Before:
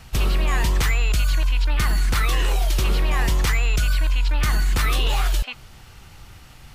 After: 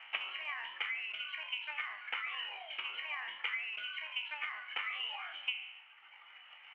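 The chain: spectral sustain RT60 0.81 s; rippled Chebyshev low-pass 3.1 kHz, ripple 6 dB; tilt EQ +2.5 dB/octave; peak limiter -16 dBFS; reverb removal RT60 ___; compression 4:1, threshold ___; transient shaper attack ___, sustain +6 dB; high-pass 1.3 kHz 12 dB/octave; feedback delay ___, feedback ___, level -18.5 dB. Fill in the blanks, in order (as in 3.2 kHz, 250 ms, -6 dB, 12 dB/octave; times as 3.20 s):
1.4 s, -39 dBFS, +10 dB, 140 ms, 58%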